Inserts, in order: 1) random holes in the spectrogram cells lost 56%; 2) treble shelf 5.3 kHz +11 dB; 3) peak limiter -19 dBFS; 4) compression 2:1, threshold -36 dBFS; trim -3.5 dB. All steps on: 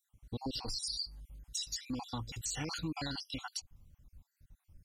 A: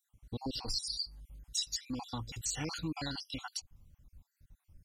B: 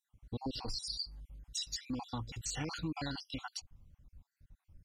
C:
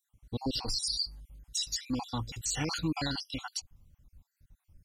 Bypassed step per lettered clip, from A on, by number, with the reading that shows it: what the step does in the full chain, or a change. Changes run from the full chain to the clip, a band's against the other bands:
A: 3, crest factor change +3.5 dB; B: 2, 8 kHz band -2.5 dB; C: 4, mean gain reduction 3.5 dB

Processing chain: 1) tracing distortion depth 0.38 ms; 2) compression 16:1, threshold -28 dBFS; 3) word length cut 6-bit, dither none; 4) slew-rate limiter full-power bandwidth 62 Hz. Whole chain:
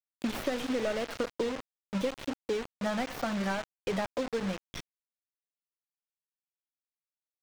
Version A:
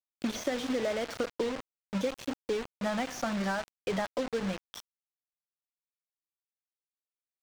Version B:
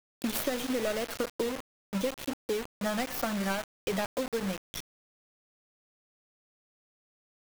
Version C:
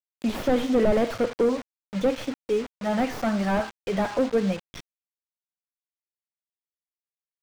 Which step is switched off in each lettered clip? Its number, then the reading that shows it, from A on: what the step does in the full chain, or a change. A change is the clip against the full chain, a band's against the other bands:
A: 1, 8 kHz band +2.5 dB; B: 4, distortion -10 dB; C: 2, mean gain reduction 8.0 dB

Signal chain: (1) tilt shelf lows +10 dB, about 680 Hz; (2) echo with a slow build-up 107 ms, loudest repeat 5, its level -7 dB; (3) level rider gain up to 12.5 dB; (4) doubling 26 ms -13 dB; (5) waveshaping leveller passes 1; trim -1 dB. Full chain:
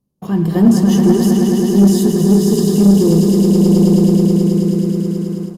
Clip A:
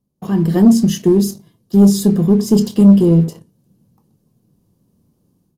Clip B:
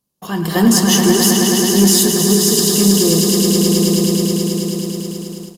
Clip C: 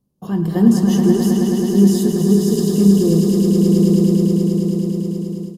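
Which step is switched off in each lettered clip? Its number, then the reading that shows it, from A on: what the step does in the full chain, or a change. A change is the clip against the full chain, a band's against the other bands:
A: 2, momentary loudness spread change +1 LU; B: 1, 8 kHz band +14.5 dB; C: 5, crest factor change +3.0 dB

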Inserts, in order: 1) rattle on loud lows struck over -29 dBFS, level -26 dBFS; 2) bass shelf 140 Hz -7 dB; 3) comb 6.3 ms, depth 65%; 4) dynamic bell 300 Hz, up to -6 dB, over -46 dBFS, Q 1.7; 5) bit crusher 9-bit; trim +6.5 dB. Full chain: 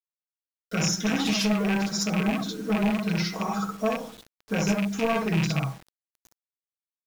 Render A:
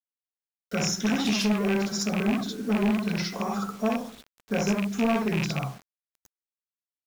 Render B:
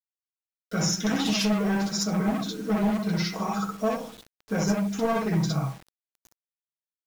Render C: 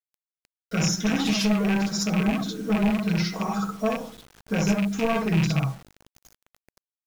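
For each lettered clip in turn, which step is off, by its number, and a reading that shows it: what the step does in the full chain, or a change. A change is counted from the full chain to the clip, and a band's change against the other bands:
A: 3, 250 Hz band +1.5 dB; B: 1, 2 kHz band -3.5 dB; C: 2, 125 Hz band +2.5 dB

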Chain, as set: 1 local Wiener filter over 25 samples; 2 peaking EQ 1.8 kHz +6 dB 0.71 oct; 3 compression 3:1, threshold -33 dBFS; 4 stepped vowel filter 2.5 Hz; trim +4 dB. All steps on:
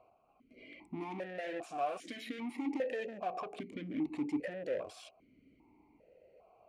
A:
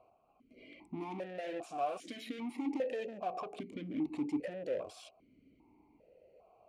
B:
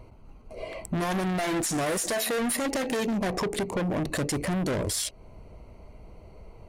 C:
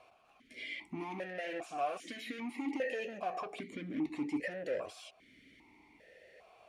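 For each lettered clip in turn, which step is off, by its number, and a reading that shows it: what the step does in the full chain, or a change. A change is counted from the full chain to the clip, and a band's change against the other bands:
2, 2 kHz band -4.0 dB; 4, 8 kHz band +18.0 dB; 1, 2 kHz band +4.5 dB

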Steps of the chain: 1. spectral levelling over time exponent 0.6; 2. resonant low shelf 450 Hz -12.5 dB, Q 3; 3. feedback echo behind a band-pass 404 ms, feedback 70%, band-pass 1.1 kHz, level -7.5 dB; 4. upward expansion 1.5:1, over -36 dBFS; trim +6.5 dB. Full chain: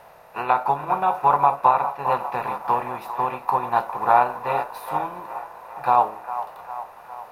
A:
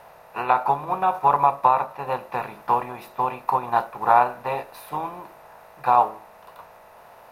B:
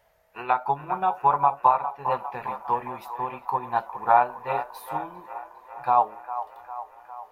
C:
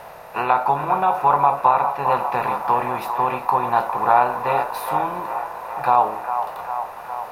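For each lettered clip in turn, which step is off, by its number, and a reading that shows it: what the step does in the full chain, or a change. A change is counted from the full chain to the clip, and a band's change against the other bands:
3, momentary loudness spread change -4 LU; 1, loudness change -3.0 LU; 4, momentary loudness spread change -6 LU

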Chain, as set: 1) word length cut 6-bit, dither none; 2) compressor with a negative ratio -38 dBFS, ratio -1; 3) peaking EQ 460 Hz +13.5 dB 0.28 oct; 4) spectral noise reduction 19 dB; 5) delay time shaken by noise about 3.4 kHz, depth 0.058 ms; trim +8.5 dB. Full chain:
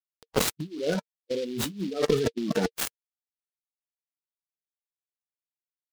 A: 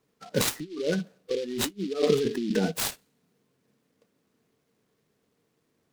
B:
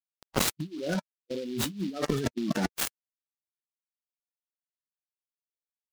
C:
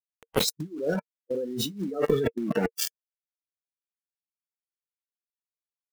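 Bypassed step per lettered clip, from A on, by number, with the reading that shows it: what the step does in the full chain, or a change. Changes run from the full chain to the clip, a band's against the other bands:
1, distortion -11 dB; 3, 500 Hz band -6.0 dB; 5, 4 kHz band +2.0 dB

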